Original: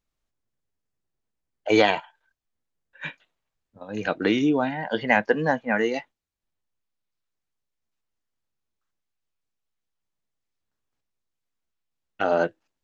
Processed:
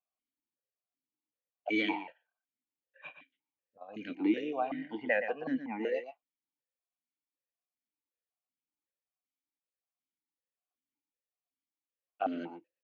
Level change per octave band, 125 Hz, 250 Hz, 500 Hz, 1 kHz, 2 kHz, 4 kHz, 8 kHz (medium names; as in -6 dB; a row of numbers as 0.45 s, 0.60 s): -19.5 dB, -8.5 dB, -12.0 dB, -11.5 dB, -11.5 dB, -12.5 dB, no reading